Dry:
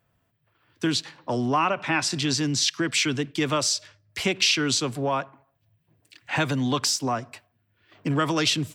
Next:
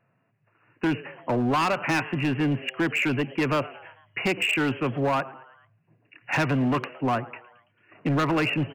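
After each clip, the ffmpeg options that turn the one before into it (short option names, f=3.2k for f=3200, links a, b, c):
-filter_complex "[0:a]afftfilt=real='re*between(b*sr/4096,100,2900)':imag='im*between(b*sr/4096,100,2900)':win_size=4096:overlap=0.75,asplit=5[a][b][c][d][e];[b]adelay=111,afreqshift=120,volume=-21.5dB[f];[c]adelay=222,afreqshift=240,volume=-26.4dB[g];[d]adelay=333,afreqshift=360,volume=-31.3dB[h];[e]adelay=444,afreqshift=480,volume=-36.1dB[i];[a][f][g][h][i]amix=inputs=5:normalize=0,asoftclip=type=hard:threshold=-22.5dB,volume=3dB"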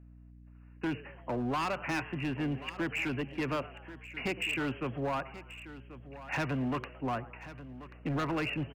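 -af "aeval=exprs='val(0)+0.00708*(sin(2*PI*60*n/s)+sin(2*PI*2*60*n/s)/2+sin(2*PI*3*60*n/s)/3+sin(2*PI*4*60*n/s)/4+sin(2*PI*5*60*n/s)/5)':c=same,aecho=1:1:1085:0.178,volume=-9dB"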